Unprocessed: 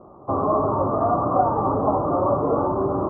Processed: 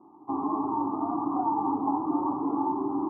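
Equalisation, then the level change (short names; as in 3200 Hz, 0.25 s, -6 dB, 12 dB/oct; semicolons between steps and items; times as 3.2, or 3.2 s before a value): vowel filter u; bell 1200 Hz +5 dB 1.5 oct; notch 480 Hz, Q 12; +2.5 dB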